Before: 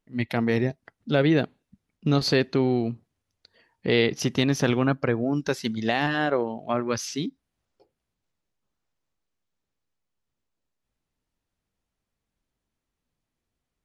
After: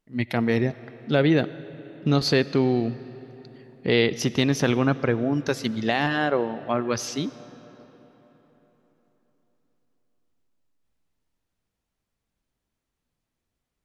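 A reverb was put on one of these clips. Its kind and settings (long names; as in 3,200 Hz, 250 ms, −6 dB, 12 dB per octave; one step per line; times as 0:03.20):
comb and all-pass reverb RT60 4.2 s, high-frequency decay 0.65×, pre-delay 40 ms, DRR 16.5 dB
level +1 dB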